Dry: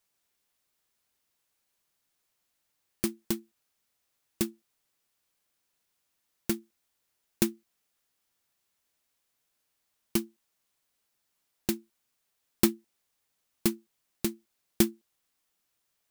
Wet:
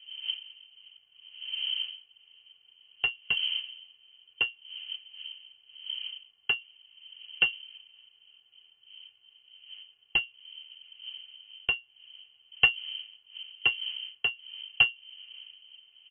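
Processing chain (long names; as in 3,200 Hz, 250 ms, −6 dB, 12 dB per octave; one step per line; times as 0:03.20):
wind on the microphone 170 Hz −46 dBFS
comb filter 3 ms, depth 75%
voice inversion scrambler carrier 3,100 Hz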